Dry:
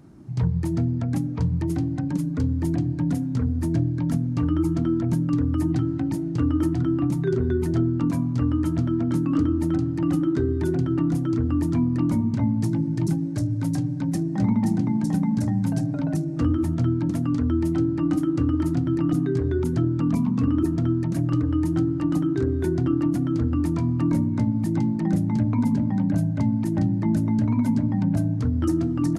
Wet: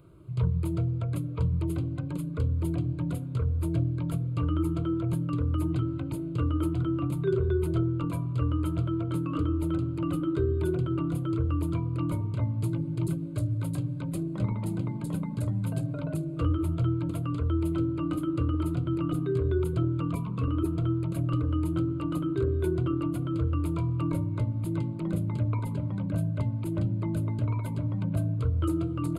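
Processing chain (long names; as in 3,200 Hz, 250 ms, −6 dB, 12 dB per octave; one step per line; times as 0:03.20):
phaser with its sweep stopped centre 1,200 Hz, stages 8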